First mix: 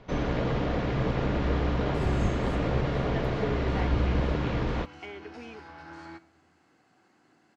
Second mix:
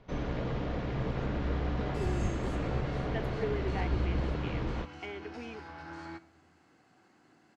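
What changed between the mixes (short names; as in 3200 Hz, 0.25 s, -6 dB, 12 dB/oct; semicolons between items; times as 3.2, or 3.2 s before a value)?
first sound -7.5 dB; master: add low shelf 160 Hz +3.5 dB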